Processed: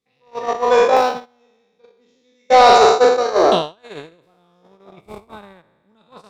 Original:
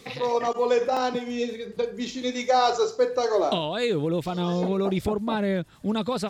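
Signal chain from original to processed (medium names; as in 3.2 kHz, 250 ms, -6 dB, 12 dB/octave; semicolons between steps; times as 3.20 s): spectral sustain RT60 2.30 s; dynamic bell 1.1 kHz, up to +5 dB, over -31 dBFS, Q 0.81; gate -15 dBFS, range -42 dB; saturation -10 dBFS, distortion -17 dB; trim +7.5 dB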